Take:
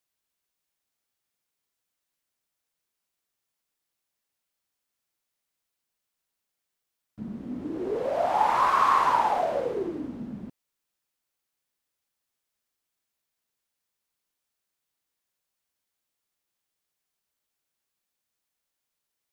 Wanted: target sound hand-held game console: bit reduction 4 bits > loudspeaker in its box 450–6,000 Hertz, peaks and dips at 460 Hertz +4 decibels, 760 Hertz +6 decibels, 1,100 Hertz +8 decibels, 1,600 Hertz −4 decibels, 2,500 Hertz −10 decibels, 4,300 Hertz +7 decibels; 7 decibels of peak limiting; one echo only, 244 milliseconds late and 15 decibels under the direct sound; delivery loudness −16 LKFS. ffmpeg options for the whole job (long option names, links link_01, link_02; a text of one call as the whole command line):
ffmpeg -i in.wav -af "alimiter=limit=-17dB:level=0:latency=1,aecho=1:1:244:0.178,acrusher=bits=3:mix=0:aa=0.000001,highpass=450,equalizer=frequency=460:width_type=q:width=4:gain=4,equalizer=frequency=760:width_type=q:width=4:gain=6,equalizer=frequency=1100:width_type=q:width=4:gain=8,equalizer=frequency=1600:width_type=q:width=4:gain=-4,equalizer=frequency=2500:width_type=q:width=4:gain=-10,equalizer=frequency=4300:width_type=q:width=4:gain=7,lowpass=frequency=6000:width=0.5412,lowpass=frequency=6000:width=1.3066,volume=4.5dB" out.wav